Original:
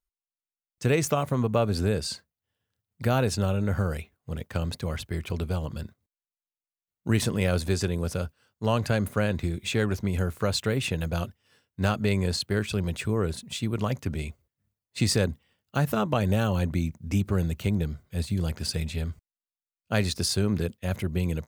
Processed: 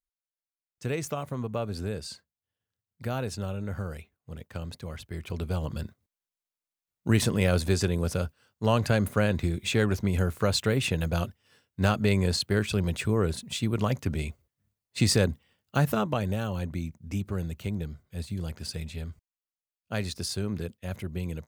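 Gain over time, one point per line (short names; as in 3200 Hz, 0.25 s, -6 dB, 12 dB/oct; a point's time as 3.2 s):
5 s -7.5 dB
5.71 s +1 dB
15.84 s +1 dB
16.37 s -6 dB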